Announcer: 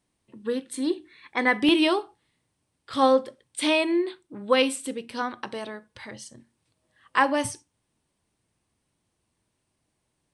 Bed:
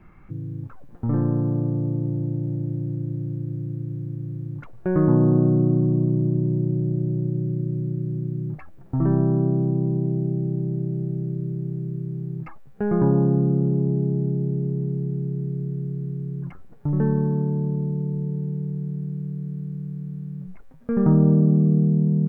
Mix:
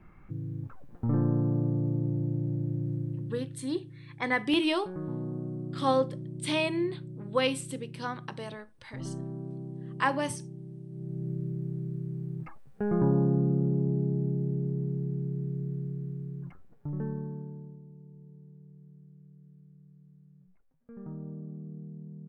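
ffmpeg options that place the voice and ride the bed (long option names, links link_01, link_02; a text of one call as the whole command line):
ffmpeg -i stem1.wav -i stem2.wav -filter_complex "[0:a]adelay=2850,volume=-6dB[link_01];[1:a]volume=7.5dB,afade=type=out:start_time=2.96:duration=0.67:silence=0.211349,afade=type=in:start_time=10.89:duration=0.42:silence=0.251189,afade=type=out:start_time=15.72:duration=2.09:silence=0.11885[link_02];[link_01][link_02]amix=inputs=2:normalize=0" out.wav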